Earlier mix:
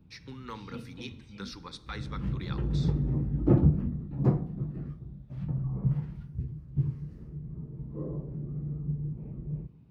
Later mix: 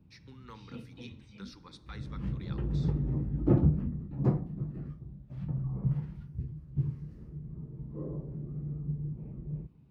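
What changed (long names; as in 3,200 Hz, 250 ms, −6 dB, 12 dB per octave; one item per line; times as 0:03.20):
speech −8.5 dB
background: send off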